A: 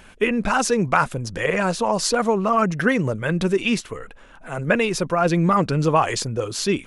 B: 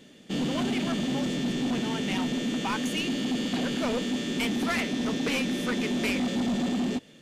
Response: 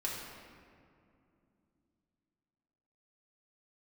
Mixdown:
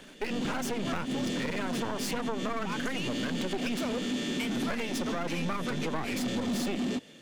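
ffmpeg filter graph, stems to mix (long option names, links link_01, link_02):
-filter_complex "[0:a]aeval=exprs='max(val(0),0)':channel_layout=same,volume=-3.5dB,asplit=2[link_01][link_02];[1:a]volume=2dB[link_03];[link_02]apad=whole_len=318350[link_04];[link_03][link_04]sidechaincompress=threshold=-29dB:ratio=8:attack=21:release=104[link_05];[link_01][link_05]amix=inputs=2:normalize=0,lowshelf=frequency=180:gain=-7,acrossover=split=260[link_06][link_07];[link_07]acompressor=threshold=-30dB:ratio=6[link_08];[link_06][link_08]amix=inputs=2:normalize=0,asoftclip=type=tanh:threshold=-23.5dB"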